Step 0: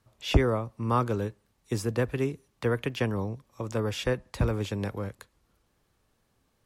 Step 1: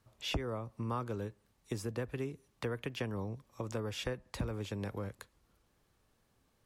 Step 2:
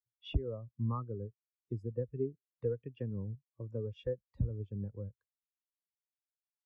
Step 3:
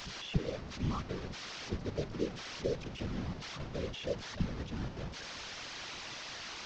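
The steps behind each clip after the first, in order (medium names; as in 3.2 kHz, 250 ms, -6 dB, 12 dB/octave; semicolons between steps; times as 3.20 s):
compression 3:1, threshold -34 dBFS, peak gain reduction 15 dB; trim -2 dB
spectral contrast expander 2.5:1; trim +2.5 dB
one-bit delta coder 32 kbps, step -37.5 dBFS; whisper effect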